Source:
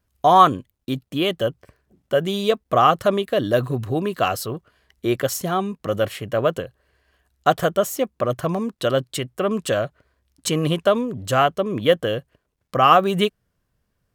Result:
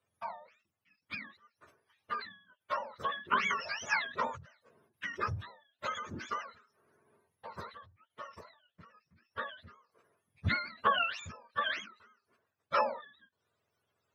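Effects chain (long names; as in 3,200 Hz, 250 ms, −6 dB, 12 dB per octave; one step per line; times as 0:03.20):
frequency axis turned over on the octave scale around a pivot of 820 Hz
three-way crossover with the lows and the highs turned down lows −16 dB, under 510 Hz, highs −15 dB, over 3,000 Hz
in parallel at −0.5 dB: downward compressor, threshold −31 dBFS, peak gain reduction 19.5 dB
on the sum: every ending faded ahead of time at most 110 dB per second
level −2.5 dB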